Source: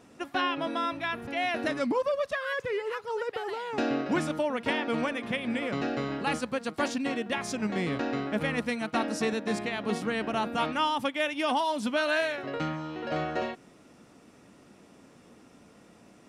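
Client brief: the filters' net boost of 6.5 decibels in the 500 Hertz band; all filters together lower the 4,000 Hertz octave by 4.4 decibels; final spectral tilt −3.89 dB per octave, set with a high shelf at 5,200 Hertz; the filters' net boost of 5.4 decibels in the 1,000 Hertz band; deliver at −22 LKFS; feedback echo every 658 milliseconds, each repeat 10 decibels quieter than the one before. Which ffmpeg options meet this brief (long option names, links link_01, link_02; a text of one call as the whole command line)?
ffmpeg -i in.wav -af "equalizer=frequency=500:width_type=o:gain=6.5,equalizer=frequency=1000:width_type=o:gain=5,equalizer=frequency=4000:width_type=o:gain=-5,highshelf=frequency=5200:gain=-4.5,aecho=1:1:658|1316|1974|2632:0.316|0.101|0.0324|0.0104,volume=4dB" out.wav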